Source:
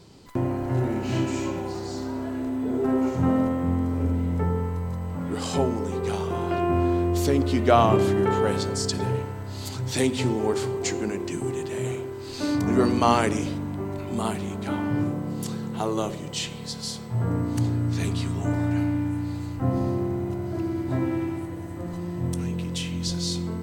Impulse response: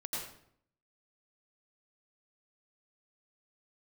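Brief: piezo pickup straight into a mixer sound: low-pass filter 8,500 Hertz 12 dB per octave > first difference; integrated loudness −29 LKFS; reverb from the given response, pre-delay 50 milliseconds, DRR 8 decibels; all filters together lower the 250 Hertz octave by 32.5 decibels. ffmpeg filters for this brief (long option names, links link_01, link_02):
-filter_complex "[0:a]equalizer=frequency=250:width_type=o:gain=-6,asplit=2[link_01][link_02];[1:a]atrim=start_sample=2205,adelay=50[link_03];[link_02][link_03]afir=irnorm=-1:irlink=0,volume=-10dB[link_04];[link_01][link_04]amix=inputs=2:normalize=0,lowpass=8500,aderivative,volume=11.5dB"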